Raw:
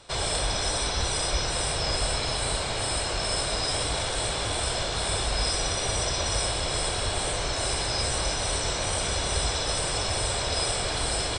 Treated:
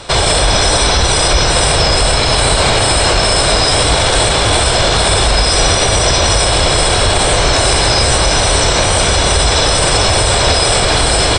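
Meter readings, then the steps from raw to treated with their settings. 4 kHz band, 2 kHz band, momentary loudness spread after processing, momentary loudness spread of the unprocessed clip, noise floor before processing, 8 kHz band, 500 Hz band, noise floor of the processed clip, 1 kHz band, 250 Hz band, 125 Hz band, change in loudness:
+15.5 dB, +17.0 dB, 1 LU, 1 LU, -29 dBFS, +14.5 dB, +17.0 dB, -13 dBFS, +17.0 dB, +17.0 dB, +16.5 dB, +16.0 dB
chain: treble shelf 5.4 kHz -4 dB; loudness maximiser +22 dB; trim -1 dB

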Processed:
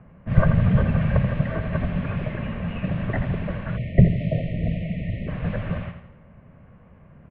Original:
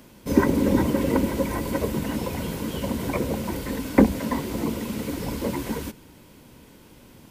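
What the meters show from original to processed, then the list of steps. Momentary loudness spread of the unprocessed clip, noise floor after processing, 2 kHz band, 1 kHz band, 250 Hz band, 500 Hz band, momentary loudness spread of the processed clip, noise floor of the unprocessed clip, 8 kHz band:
10 LU, -51 dBFS, +0.5 dB, -4.5 dB, -2.5 dB, -4.5 dB, 11 LU, -51 dBFS, under -40 dB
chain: mistuned SSB -390 Hz 170–3200 Hz; level-controlled noise filter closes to 1.2 kHz, open at -19 dBFS; on a send: feedback delay 83 ms, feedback 43%, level -9 dB; on the sum: spectral selection erased 3.77–5.28 s, 720–1800 Hz; trim +2.5 dB

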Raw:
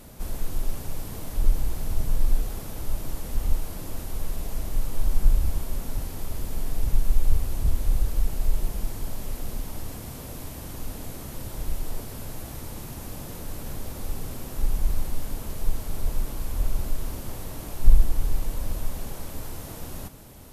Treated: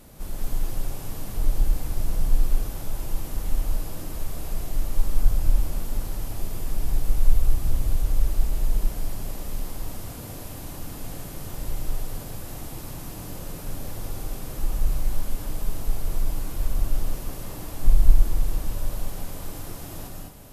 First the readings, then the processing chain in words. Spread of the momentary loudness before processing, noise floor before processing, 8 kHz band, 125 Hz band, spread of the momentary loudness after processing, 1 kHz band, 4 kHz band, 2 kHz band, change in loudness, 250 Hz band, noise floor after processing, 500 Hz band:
10 LU, -39 dBFS, +0.5 dB, +1.0 dB, 11 LU, +1.0 dB, +0.5 dB, +0.5 dB, +1.5 dB, +0.5 dB, -37 dBFS, +0.5 dB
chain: gated-style reverb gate 240 ms rising, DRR -1 dB; trim -3 dB

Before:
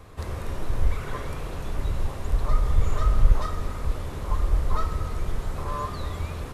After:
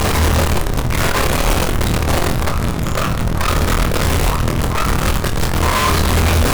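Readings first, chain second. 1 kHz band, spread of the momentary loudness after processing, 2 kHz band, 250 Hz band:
+15.0 dB, 5 LU, +21.0 dB, +18.5 dB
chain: jump at every zero crossing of -20.5 dBFS; peak limiter -14.5 dBFS, peak gain reduction 9.5 dB; sine folder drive 8 dB, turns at -14.5 dBFS; on a send: flutter echo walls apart 4.3 m, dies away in 0.23 s

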